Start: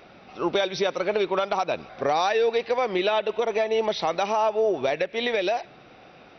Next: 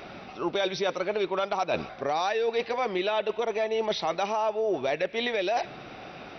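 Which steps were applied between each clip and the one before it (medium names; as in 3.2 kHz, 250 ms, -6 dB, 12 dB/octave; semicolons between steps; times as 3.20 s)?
band-stop 500 Hz, Q 15; reverse; compression 6:1, threshold -32 dBFS, peak gain reduction 13 dB; reverse; trim +7 dB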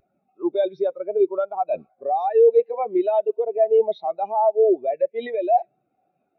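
spectral contrast expander 2.5:1; trim +7 dB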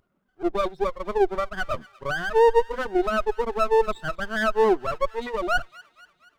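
comb filter that takes the minimum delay 0.6 ms; feedback echo behind a high-pass 239 ms, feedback 56%, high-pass 1.7 kHz, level -17 dB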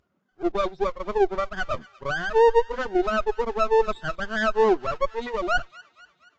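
Vorbis 48 kbps 16 kHz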